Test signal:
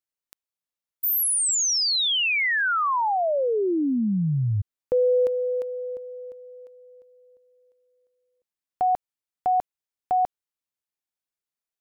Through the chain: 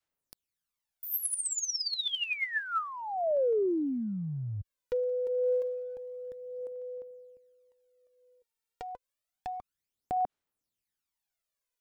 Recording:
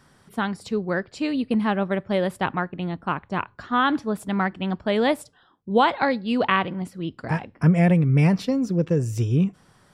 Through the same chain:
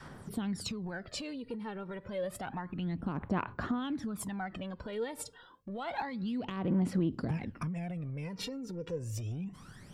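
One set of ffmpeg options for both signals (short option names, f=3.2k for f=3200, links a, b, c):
-af "adynamicequalizer=threshold=0.0224:dfrequency=240:dqfactor=1.3:tfrequency=240:tqfactor=1.3:attack=5:release=100:ratio=0.375:range=2.5:mode=boostabove:tftype=bell,acompressor=threshold=-34dB:ratio=16:attack=1.2:release=61:knee=1:detection=rms,aphaser=in_gain=1:out_gain=1:delay=2.2:decay=0.67:speed=0.29:type=sinusoidal"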